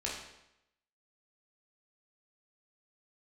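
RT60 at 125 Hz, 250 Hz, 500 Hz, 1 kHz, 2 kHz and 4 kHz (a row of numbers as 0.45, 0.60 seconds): 0.85, 0.85, 0.85, 0.85, 0.80, 0.75 seconds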